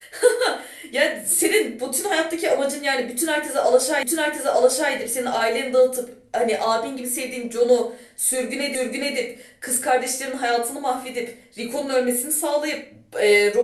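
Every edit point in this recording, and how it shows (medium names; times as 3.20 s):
4.03 s: repeat of the last 0.9 s
8.75 s: repeat of the last 0.42 s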